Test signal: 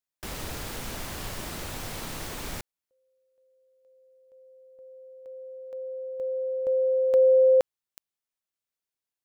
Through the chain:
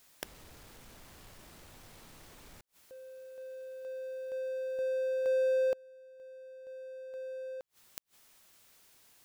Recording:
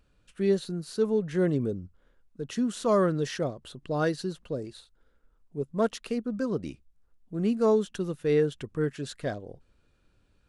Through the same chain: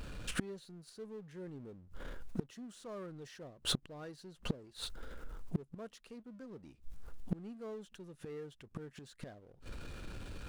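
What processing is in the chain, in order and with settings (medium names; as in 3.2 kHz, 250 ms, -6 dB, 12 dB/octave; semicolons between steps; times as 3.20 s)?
power-law waveshaper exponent 0.7; inverted gate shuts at -28 dBFS, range -30 dB; trim +6 dB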